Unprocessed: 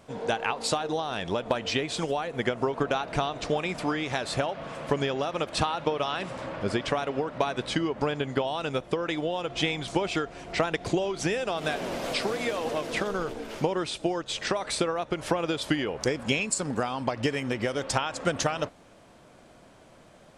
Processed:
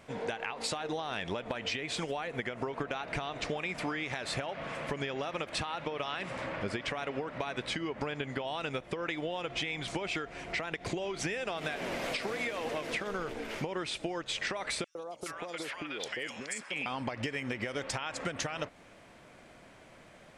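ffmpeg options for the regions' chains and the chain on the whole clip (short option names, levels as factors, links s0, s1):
-filter_complex "[0:a]asettb=1/sr,asplit=3[s0][s1][s2];[s0]atrim=end=14.844[s3];[s1]atrim=start=14.84:end=16.86,asetpts=PTS-STARTPTS,afade=t=in:d=0.004:c=qsin,afade=t=out:st=2.016:d=0.004:c=qsin,highpass=f=550:p=1,acompressor=threshold=0.0251:ratio=4:attack=3.2:release=140:knee=1:detection=peak,acrossover=split=950|4200[s4][s5][s6];[s4]adelay=110[s7];[s5]adelay=420[s8];[s7][s8][s6]amix=inputs=3:normalize=0,atrim=end_sample=89082[s9];[s2]atrim=start=16.856[s10];[s3][s9]acrossfade=d=0.004:c1=hsin:c2=qsin[s11];[s11][s10]acrossfade=d=0.004:c1=qsin:c2=hsin,equalizer=f=2100:t=o:w=0.86:g=8,alimiter=limit=0.178:level=0:latency=1:release=119,acompressor=threshold=0.0355:ratio=6,volume=0.75"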